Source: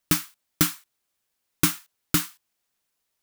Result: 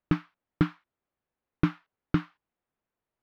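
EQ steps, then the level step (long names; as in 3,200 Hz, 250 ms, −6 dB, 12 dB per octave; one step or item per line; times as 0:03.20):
low-pass filter 1,000 Hz 6 dB per octave
high-frequency loss of the air 320 metres
+1.5 dB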